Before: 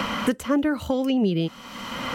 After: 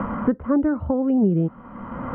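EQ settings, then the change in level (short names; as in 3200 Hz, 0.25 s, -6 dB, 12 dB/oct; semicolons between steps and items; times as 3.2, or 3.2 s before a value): LPF 1400 Hz 24 dB/oct; air absorption 130 m; low shelf 200 Hz +8.5 dB; 0.0 dB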